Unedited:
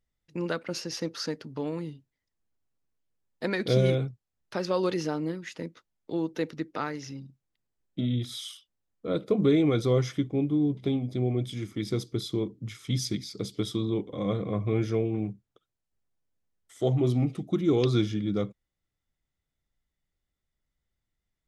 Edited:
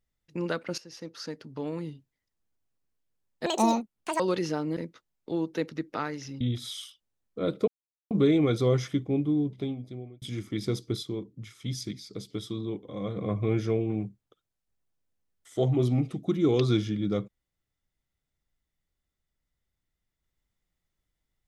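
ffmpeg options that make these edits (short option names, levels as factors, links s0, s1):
-filter_complex "[0:a]asplit=10[s0][s1][s2][s3][s4][s5][s6][s7][s8][s9];[s0]atrim=end=0.78,asetpts=PTS-STARTPTS,afade=t=out:st=0.776:d=0.004:c=hsin:silence=0.16788[s10];[s1]atrim=start=0.78:end=3.464,asetpts=PTS-STARTPTS,afade=t=in:d=1.1:silence=0.16788[s11];[s2]atrim=start=3.46:end=4.75,asetpts=PTS-STARTPTS,asetrate=77175,aresample=44100[s12];[s3]atrim=start=4.746:end=5.322[s13];[s4]atrim=start=5.578:end=7.222[s14];[s5]atrim=start=8.078:end=9.35,asetpts=PTS-STARTPTS,afade=t=out:st=1.268:d=0.004:c=hsin,apad=pad_dur=0.43[s15];[s6]atrim=start=9.35:end=11.46,asetpts=PTS-STARTPTS,afade=t=in:d=0.004:c=hsin,afade=t=out:st=1.15:d=0.96[s16];[s7]atrim=start=11.46:end=12.272,asetpts=PTS-STARTPTS,afade=t=in:d=0.004:c=hsin[s17];[s8]atrim=start=12.268:end=14.412,asetpts=PTS-STARTPTS,volume=0.562[s18];[s9]atrim=start=14.408[s19];[s10][s11]concat=n=2:v=0:a=1[s20];[s20][s12]acrossfade=d=0.004:c1=hsin:c2=hsin[s21];[s21][s13]acrossfade=d=0.004:c1=hsin:c2=hsin[s22];[s22][s14]acrossfade=d=0.004:c1=hsin:c2=hsin[s23];[s15][s16][s17]concat=n=3:v=0:a=1[s24];[s23][s24]acrossfade=d=0.004:c1=hsin:c2=hsin[s25];[s25][s18]acrossfade=d=0.004:c1=hsin:c2=hsin[s26];[s26][s19]acrossfade=d=0.004:c1=hsin:c2=hsin"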